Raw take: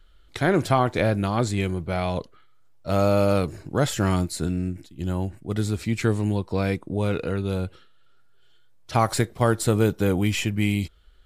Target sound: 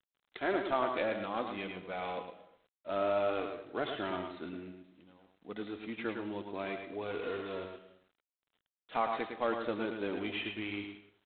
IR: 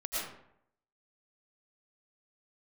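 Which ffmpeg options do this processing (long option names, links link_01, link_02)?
-filter_complex "[0:a]asettb=1/sr,asplit=3[link_01][link_02][link_03];[link_01]atrim=end=7.214[link_04];[link_02]atrim=start=7.21:end=7.65,asetpts=PTS-STARTPTS,afade=type=in:duration=0.004:curve=qsin,afade=type=out:start_time=0.436:duration=0.004:curve=qsin,aeval=exprs='val(0)+0.5*0.0355*sgn(val(0))':channel_layout=same[link_05];[link_03]atrim=start=7.646[link_06];[link_04][link_05]acrossfade=duration=0.004:curve1=hsin:curve2=qsin[link_07];[link_07][link_06]acrossfade=duration=0.004:curve1=qsin:curve2=hsin,highpass=330,asplit=3[link_08][link_09][link_10];[link_08]afade=type=out:start_time=4.71:duration=0.02[link_11];[link_09]acompressor=threshold=-50dB:ratio=6,afade=type=in:start_time=4.71:duration=0.02,afade=type=out:start_time=5.39:duration=0.02[link_12];[link_10]afade=type=in:start_time=5.39:duration=0.02[link_13];[link_11][link_12][link_13]amix=inputs=3:normalize=0,flanger=delay=2.6:depth=1.6:regen=-38:speed=0.28:shape=triangular,aecho=1:1:108:0.501,asplit=2[link_14][link_15];[1:a]atrim=start_sample=2205[link_16];[link_15][link_16]afir=irnorm=-1:irlink=0,volume=-15dB[link_17];[link_14][link_17]amix=inputs=2:normalize=0,volume=-7dB" -ar 8000 -c:a adpcm_g726 -b:a 24k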